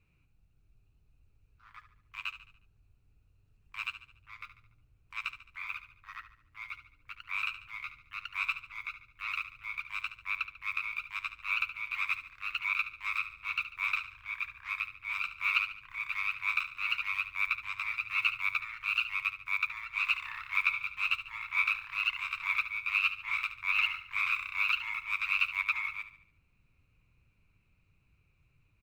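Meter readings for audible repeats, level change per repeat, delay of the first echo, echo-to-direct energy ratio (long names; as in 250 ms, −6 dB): 4, −7.0 dB, 72 ms, −11.0 dB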